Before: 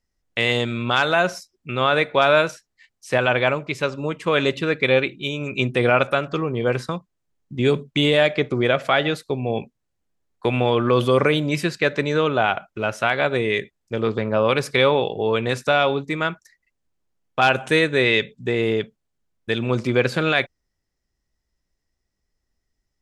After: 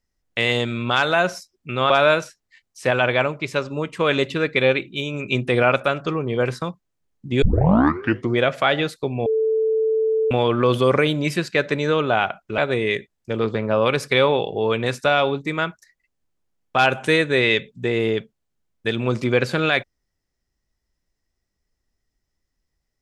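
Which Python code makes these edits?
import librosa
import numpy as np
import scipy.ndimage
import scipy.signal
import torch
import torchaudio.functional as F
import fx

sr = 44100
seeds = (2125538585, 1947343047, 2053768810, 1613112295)

y = fx.edit(x, sr, fx.cut(start_s=1.9, length_s=0.27),
    fx.tape_start(start_s=7.69, length_s=0.91),
    fx.bleep(start_s=9.53, length_s=1.05, hz=441.0, db=-16.5),
    fx.cut(start_s=12.85, length_s=0.36), tone=tone)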